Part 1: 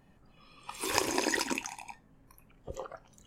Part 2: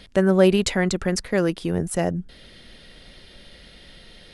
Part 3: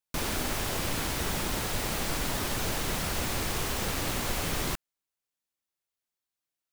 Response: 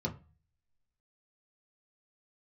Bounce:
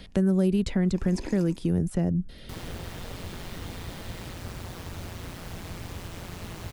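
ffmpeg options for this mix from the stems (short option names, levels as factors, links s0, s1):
-filter_complex "[0:a]aeval=exprs='val(0)*pow(10,-28*(0.5-0.5*cos(2*PI*0.77*n/s))/20)':c=same,volume=0.531[s0];[1:a]volume=0.794[s1];[2:a]aeval=exprs='val(0)*sin(2*PI*88*n/s)':c=same,adelay=2350,volume=0.398[s2];[s0][s1][s2]amix=inputs=3:normalize=0,lowshelf=f=400:g=6,acrossover=split=320|5300[s3][s4][s5];[s3]acompressor=threshold=0.0891:ratio=4[s6];[s4]acompressor=threshold=0.0141:ratio=4[s7];[s5]acompressor=threshold=0.00316:ratio=4[s8];[s6][s7][s8]amix=inputs=3:normalize=0"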